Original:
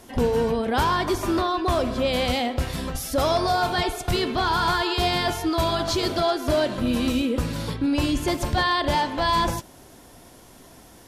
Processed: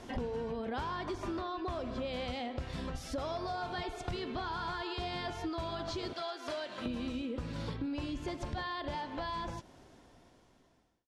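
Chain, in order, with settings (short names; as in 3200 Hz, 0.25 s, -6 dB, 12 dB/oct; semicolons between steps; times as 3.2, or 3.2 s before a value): ending faded out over 3.34 s; 6.13–6.86 HPF 1300 Hz 6 dB/oct; compressor 8:1, threshold -35 dBFS, peak gain reduction 16.5 dB; air absorption 91 m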